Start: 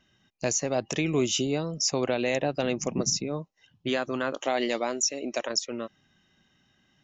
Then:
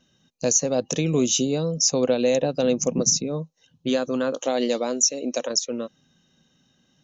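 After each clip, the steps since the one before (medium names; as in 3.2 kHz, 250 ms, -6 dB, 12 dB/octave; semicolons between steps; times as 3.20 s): graphic EQ with 31 bands 160 Hz +8 dB, 250 Hz +8 dB, 500 Hz +11 dB, 2 kHz -7 dB, 4 kHz +7 dB, 6.3 kHz +11 dB; trim -1 dB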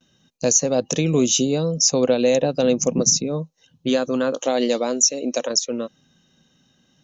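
gate with hold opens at -56 dBFS; trim +3 dB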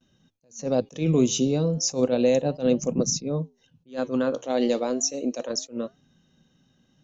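tilt EQ -1.5 dB/octave; flange 0.33 Hz, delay 2.7 ms, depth 10 ms, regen -89%; attacks held to a fixed rise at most 250 dB/s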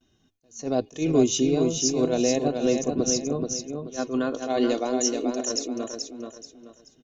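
comb 2.8 ms, depth 59%; on a send: feedback delay 431 ms, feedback 31%, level -5 dB; on the sum: trim -1 dB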